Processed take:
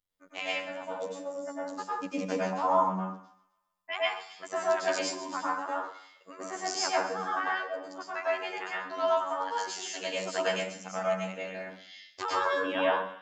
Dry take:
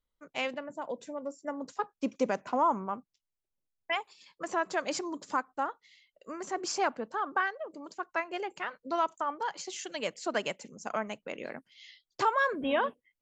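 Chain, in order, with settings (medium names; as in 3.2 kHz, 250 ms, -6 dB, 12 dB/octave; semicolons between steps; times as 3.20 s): robot voice 94.1 Hz; tilt shelf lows -3 dB, about 1.3 kHz; feedback echo behind a high-pass 131 ms, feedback 52%, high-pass 2.2 kHz, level -14 dB; plate-style reverb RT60 0.56 s, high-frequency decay 0.55×, pre-delay 90 ms, DRR -7 dB; trim -3 dB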